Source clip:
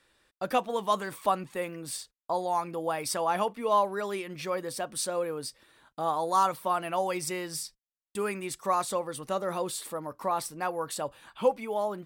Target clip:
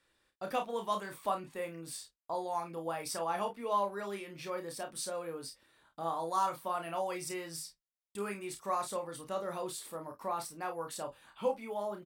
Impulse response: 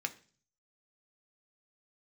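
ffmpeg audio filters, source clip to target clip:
-af "aecho=1:1:30|49:0.501|0.251,volume=-8dB"

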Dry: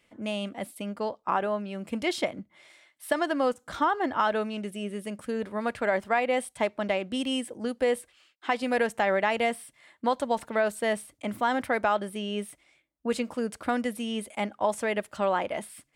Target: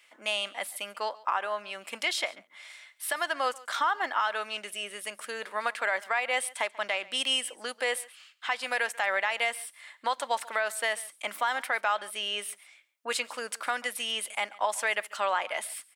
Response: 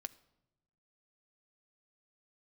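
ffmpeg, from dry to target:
-filter_complex "[0:a]highpass=1.1k,alimiter=level_in=0.5dB:limit=-24dB:level=0:latency=1:release=294,volume=-0.5dB,asplit=2[a][b];[b]aecho=0:1:139:0.0841[c];[a][c]amix=inputs=2:normalize=0,volume=8dB"

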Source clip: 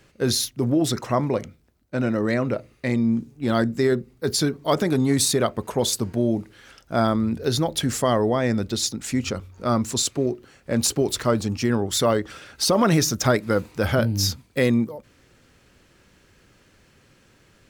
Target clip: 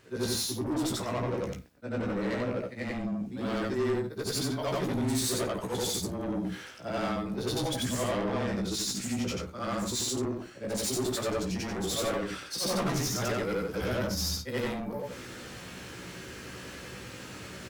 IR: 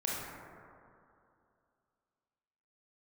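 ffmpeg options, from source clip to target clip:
-af "afftfilt=real='re':imag='-im':win_size=8192:overlap=0.75,highpass=110,areverse,acompressor=mode=upward:threshold=-28dB:ratio=2.5,areverse,asoftclip=type=tanh:threshold=-28.5dB,afreqshift=-18,aecho=1:1:16|27|53:0.596|0.168|0.15"

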